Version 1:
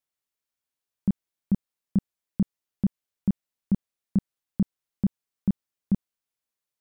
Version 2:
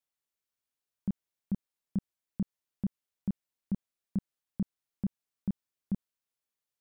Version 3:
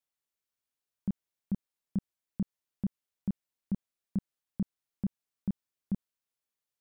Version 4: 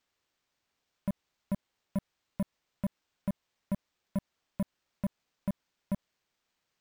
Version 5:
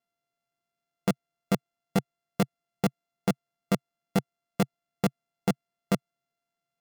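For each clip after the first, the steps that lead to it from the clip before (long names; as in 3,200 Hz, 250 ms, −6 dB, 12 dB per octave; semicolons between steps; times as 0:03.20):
brickwall limiter −21 dBFS, peak gain reduction 5.5 dB; level −3 dB
no processing that can be heard
downward compressor, threshold −29 dBFS, peak gain reduction 3.5 dB; decimation without filtering 4×; gain into a clipping stage and back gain 34 dB; level +7.5 dB
samples sorted by size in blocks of 64 samples; output level in coarse steps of 16 dB; low shelf with overshoot 110 Hz −7.5 dB, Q 3; level +8.5 dB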